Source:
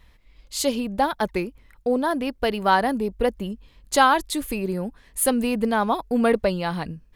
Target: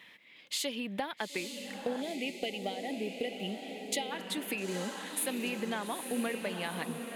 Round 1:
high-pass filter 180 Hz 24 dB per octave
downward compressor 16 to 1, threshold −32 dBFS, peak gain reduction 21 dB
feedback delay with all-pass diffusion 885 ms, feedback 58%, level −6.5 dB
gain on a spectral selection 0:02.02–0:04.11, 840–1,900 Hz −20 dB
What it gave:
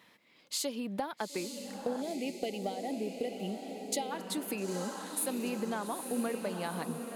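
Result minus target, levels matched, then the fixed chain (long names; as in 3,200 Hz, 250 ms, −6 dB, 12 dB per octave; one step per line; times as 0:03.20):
2,000 Hz band −5.5 dB
high-pass filter 180 Hz 24 dB per octave
flat-topped bell 2,500 Hz +9.5 dB 1.3 octaves
downward compressor 16 to 1, threshold −32 dBFS, peak gain reduction 23.5 dB
feedback delay with all-pass diffusion 885 ms, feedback 58%, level −6.5 dB
gain on a spectral selection 0:02.02–0:04.11, 840–1,900 Hz −20 dB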